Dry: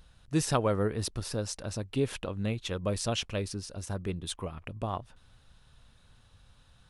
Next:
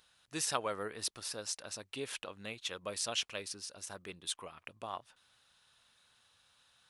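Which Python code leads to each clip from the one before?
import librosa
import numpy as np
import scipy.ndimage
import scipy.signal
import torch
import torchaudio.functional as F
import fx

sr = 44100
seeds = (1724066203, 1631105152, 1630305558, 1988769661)

y = fx.highpass(x, sr, hz=1500.0, slope=6)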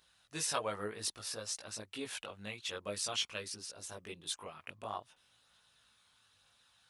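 y = fx.chorus_voices(x, sr, voices=2, hz=0.54, base_ms=19, depth_ms=1.0, mix_pct=50)
y = F.gain(torch.from_numpy(y), 2.5).numpy()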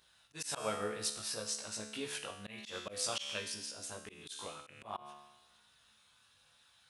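y = fx.comb_fb(x, sr, f0_hz=72.0, decay_s=0.99, harmonics='all', damping=0.0, mix_pct=80)
y = fx.auto_swell(y, sr, attack_ms=122.0)
y = F.gain(torch.from_numpy(y), 12.0).numpy()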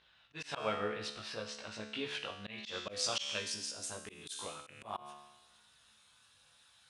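y = fx.filter_sweep_lowpass(x, sr, from_hz=3000.0, to_hz=10000.0, start_s=1.79, end_s=4.15, q=1.3)
y = F.gain(torch.from_numpy(y), 1.0).numpy()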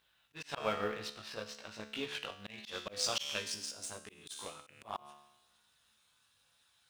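y = fx.law_mismatch(x, sr, coded='A')
y = F.gain(torch.from_numpy(y), 2.5).numpy()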